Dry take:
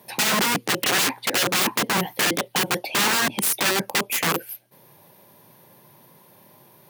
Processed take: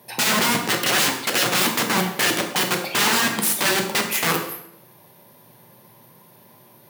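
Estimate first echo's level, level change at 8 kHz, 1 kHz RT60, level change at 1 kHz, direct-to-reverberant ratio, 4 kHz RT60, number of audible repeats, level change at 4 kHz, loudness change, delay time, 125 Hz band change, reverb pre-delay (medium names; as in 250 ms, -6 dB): no echo, +1.5 dB, 0.75 s, +1.5 dB, 3.0 dB, 0.65 s, no echo, +2.0 dB, +2.0 dB, no echo, +2.0 dB, 7 ms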